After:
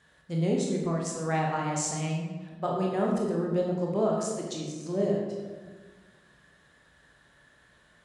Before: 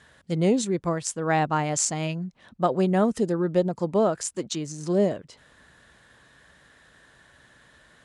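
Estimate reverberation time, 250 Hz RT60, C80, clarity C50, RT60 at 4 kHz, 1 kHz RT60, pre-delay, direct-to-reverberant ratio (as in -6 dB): 1.4 s, 1.8 s, 4.0 dB, 2.0 dB, 0.90 s, 1.3 s, 19 ms, -2.0 dB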